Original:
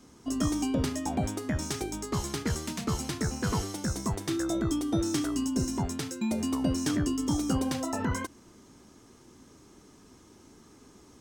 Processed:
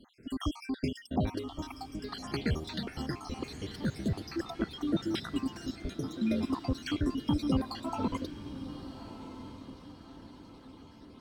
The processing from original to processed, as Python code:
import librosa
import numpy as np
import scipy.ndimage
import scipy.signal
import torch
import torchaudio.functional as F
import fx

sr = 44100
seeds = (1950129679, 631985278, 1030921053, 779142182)

y = fx.spec_dropout(x, sr, seeds[0], share_pct=64)
y = fx.high_shelf_res(y, sr, hz=5300.0, db=-9.0, q=3.0)
y = fx.echo_diffused(y, sr, ms=1258, feedback_pct=46, wet_db=-12.0)